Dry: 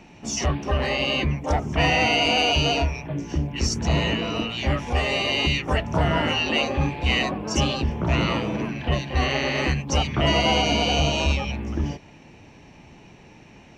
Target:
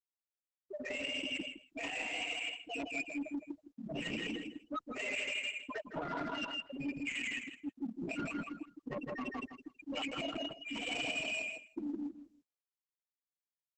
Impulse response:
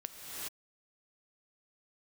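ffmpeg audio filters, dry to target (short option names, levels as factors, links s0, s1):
-filter_complex "[0:a]asplit=2[s0][s1];[s1]volume=13.3,asoftclip=hard,volume=0.075,volume=0.501[s2];[s0][s2]amix=inputs=2:normalize=0,highpass=230,equalizer=f=270:t=q:w=4:g=4,equalizer=f=780:t=q:w=4:g=-4,equalizer=f=1400:t=q:w=4:g=8,equalizer=f=2400:t=q:w=4:g=10,equalizer=f=4700:t=q:w=4:g=6,lowpass=f=7300:w=0.5412,lowpass=f=7300:w=1.3066,alimiter=limit=0.335:level=0:latency=1:release=15,highshelf=f=5300:g=-7.5[s3];[1:a]atrim=start_sample=2205,afade=t=out:st=0.14:d=0.01,atrim=end_sample=6615[s4];[s3][s4]afir=irnorm=-1:irlink=0,tremolo=f=1:d=0.75,afftfilt=real='re*gte(hypot(re,im),0.178)':imag='im*gte(hypot(re,im),0.178)':win_size=1024:overlap=0.75,adynamicsmooth=sensitivity=4:basefreq=2100,aecho=1:1:162|324|486:0.531|0.0903|0.0153,areverse,acompressor=threshold=0.01:ratio=10,areverse,asoftclip=type=tanh:threshold=0.015,volume=2" -ar 48000 -c:a libopus -b:a 10k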